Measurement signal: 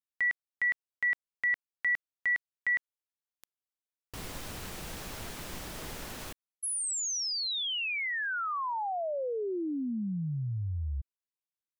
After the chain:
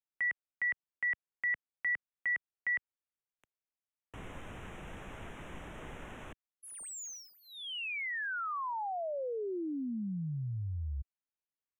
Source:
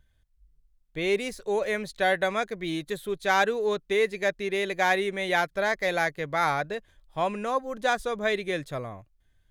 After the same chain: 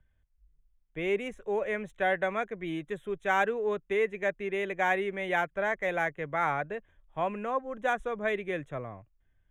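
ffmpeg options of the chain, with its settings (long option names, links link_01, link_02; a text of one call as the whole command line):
ffmpeg -i in.wav -filter_complex "[0:a]acrossover=split=100|460|3200[link_01][link_02][link_03][link_04];[link_04]adynamicsmooth=sensitivity=6.5:basefreq=4200[link_05];[link_01][link_02][link_03][link_05]amix=inputs=4:normalize=0,asuperstop=centerf=4600:order=4:qfactor=1.4,volume=-3.5dB" out.wav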